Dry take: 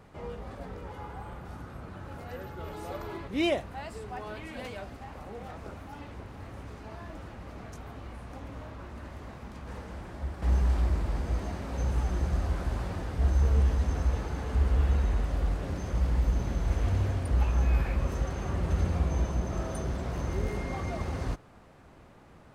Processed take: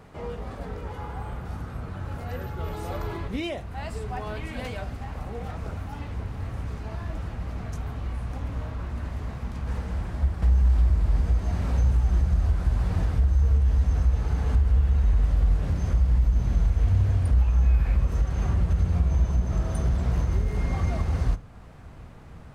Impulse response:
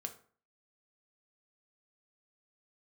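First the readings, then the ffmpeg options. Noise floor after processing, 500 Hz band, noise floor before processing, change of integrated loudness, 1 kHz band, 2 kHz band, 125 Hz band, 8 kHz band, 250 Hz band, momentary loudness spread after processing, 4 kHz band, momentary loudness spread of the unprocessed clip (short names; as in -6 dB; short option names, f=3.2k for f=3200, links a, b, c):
-43 dBFS, -0.5 dB, -54 dBFS, +4.5 dB, +1.0 dB, +0.5 dB, +6.5 dB, 0.0 dB, +1.5 dB, 13 LU, -0.5 dB, 17 LU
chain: -filter_complex "[0:a]alimiter=level_in=2.5dB:limit=-24dB:level=0:latency=1:release=344,volume=-2.5dB,asubboost=boost=2.5:cutoff=180,asplit=2[a][b];[1:a]atrim=start_sample=2205[c];[b][c]afir=irnorm=-1:irlink=0,volume=0dB[d];[a][d]amix=inputs=2:normalize=0"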